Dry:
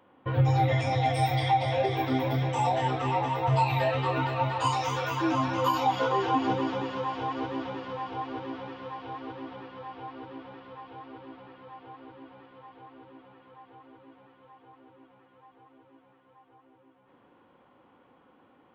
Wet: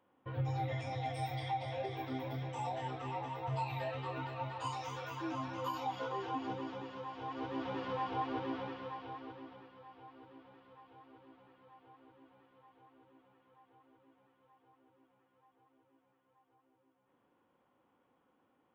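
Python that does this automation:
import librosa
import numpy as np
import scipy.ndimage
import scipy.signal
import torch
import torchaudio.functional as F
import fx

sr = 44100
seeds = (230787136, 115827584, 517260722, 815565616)

y = fx.gain(x, sr, db=fx.line((7.13, -13.0), (7.83, -2.0), (8.61, -2.0), (9.78, -14.0)))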